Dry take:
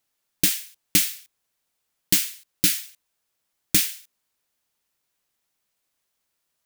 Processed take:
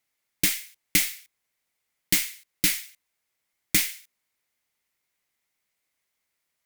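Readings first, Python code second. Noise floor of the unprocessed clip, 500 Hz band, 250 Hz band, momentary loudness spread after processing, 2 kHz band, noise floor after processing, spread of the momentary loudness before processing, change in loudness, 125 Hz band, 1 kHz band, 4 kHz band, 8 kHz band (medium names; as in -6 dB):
-78 dBFS, -2.5 dB, -3.0 dB, 11 LU, +3.0 dB, -80 dBFS, 10 LU, -3.0 dB, -3.0 dB, +0.5 dB, -2.5 dB, -3.0 dB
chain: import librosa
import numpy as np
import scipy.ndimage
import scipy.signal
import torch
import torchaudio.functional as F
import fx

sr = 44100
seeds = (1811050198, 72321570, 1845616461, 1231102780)

y = fx.cheby_harmonics(x, sr, harmonics=(8,), levels_db=(-25,), full_scale_db=-3.0)
y = fx.peak_eq(y, sr, hz=2100.0, db=10.0, octaves=0.32)
y = y * 10.0 ** (-3.0 / 20.0)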